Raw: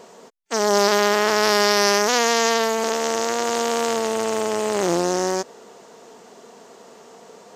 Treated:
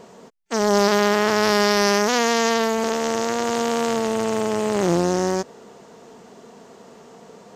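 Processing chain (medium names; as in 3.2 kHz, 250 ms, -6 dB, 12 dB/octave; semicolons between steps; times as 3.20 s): tone controls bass +10 dB, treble -3 dB; trim -1 dB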